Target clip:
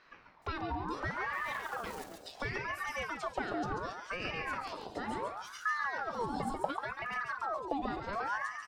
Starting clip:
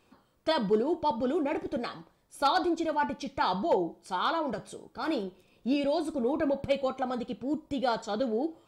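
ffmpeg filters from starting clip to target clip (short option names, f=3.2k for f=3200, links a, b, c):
-filter_complex "[0:a]asettb=1/sr,asplit=3[a][b][c];[a]atrim=end=0.914[d];[b]atrim=start=0.91:end=1.62,asetpts=PTS-STARTPTS,afade=t=in:d=0.004:c=qsin,afade=t=out:st=0.706:d=0.004:c=qsin,aeval=exprs='val(0)+0.5*0.0224*sgn(val(0))':c=same[e];[c]atrim=start=1.616[f];[d][e]acrossfade=d=0.004:c1=hsin:c2=qsin[g];[g][f]acrossfade=d=0.004:c1=qsin:c2=hsin,acrossover=split=4200[h][i];[i]adelay=420[j];[h][j]amix=inputs=2:normalize=0,acompressor=threshold=-46dB:ratio=2.5,asettb=1/sr,asplit=3[k][l][m];[k]atrim=end=6.204[n];[l]atrim=start=6.2:end=6.71,asetpts=PTS-STARTPTS,afade=t=in:d=0.004:c=qsin,afade=t=out:st=0.506:d=0.004:c=qsin,highshelf=f=6.4k:g=11[o];[m]atrim=start=6.706[p];[n][o]acrossfade=d=0.004:c1=hsin:c2=qsin[q];[q][p]acrossfade=d=0.004:c1=qsin:c2=hsin,asplit=2[r][s];[s]aecho=0:1:139|278|417|556|695:0.501|0.19|0.0724|0.0275|0.0105[t];[r][t]amix=inputs=2:normalize=0,asubboost=boost=6.5:cutoff=170,aeval=exprs='val(0)*sin(2*PI*1000*n/s+1000*0.5/0.7*sin(2*PI*0.7*n/s))':c=same,volume=6.5dB"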